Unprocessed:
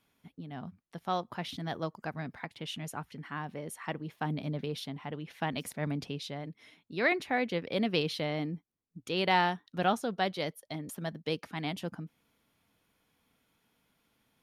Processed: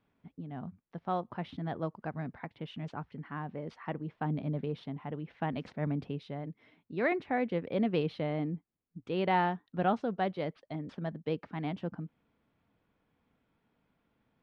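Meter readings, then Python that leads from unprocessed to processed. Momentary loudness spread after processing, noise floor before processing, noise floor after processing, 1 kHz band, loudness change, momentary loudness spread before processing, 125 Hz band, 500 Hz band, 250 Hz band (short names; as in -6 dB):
13 LU, -76 dBFS, -78 dBFS, -1.0 dB, -1.0 dB, 13 LU, +1.5 dB, 0.0 dB, +1.0 dB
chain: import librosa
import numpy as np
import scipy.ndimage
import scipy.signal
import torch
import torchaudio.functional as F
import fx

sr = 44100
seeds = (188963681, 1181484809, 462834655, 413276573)

y = np.repeat(x[::3], 3)[:len(x)]
y = fx.spacing_loss(y, sr, db_at_10k=38)
y = F.gain(torch.from_numpy(y), 2.0).numpy()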